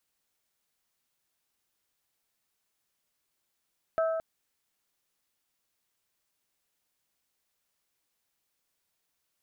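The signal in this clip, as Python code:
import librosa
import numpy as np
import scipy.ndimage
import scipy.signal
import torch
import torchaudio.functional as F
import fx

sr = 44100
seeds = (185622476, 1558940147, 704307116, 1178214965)

y = fx.strike_glass(sr, length_s=0.22, level_db=-23.0, body='bell', hz=650.0, decay_s=1.9, tilt_db=8.0, modes=3)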